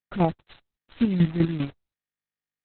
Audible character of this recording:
phaser sweep stages 6, 1 Hz, lowest notch 400–1,200 Hz
a quantiser's noise floor 6 bits, dither none
chopped level 5 Hz, depth 60%, duty 25%
Opus

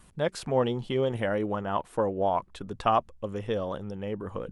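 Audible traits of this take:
background noise floor −57 dBFS
spectral slope −5.5 dB per octave

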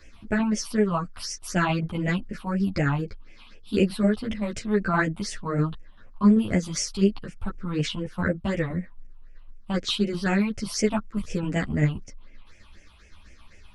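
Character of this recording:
phaser sweep stages 6, 4 Hz, lowest notch 450–1,100 Hz
tremolo saw down 7.7 Hz, depth 45%
a shimmering, thickened sound

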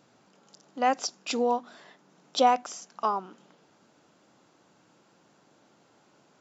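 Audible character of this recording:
background noise floor −64 dBFS
spectral slope −2.0 dB per octave

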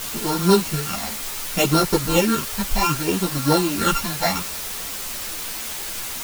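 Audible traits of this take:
a buzz of ramps at a fixed pitch in blocks of 32 samples
phaser sweep stages 8, 0.66 Hz, lowest notch 360–2,700 Hz
a quantiser's noise floor 6 bits, dither triangular
a shimmering, thickened sound

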